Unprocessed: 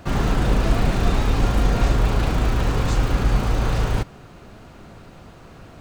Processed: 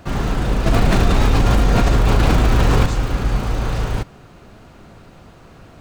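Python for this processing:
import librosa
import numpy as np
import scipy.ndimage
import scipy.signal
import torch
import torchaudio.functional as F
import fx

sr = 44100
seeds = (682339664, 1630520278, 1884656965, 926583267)

y = fx.env_flatten(x, sr, amount_pct=100, at=(0.66, 2.86))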